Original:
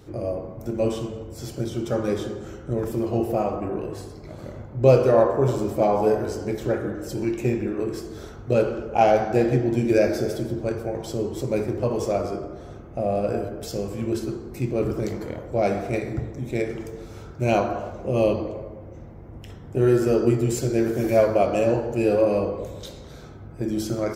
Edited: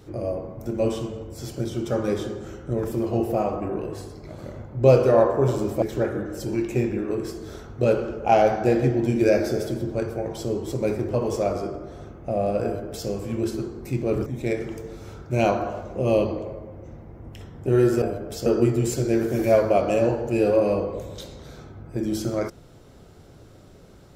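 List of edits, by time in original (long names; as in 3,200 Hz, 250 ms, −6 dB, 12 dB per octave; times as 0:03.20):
0:05.82–0:06.51: remove
0:13.33–0:13.77: duplicate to 0:20.11
0:14.95–0:16.35: remove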